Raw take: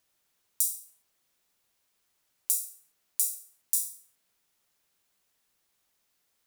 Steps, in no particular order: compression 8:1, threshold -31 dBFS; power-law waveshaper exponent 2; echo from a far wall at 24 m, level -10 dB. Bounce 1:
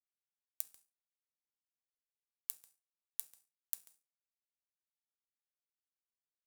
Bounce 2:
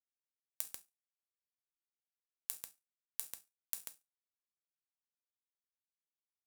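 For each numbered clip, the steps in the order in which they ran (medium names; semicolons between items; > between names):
echo from a far wall > compression > power-law waveshaper; power-law waveshaper > echo from a far wall > compression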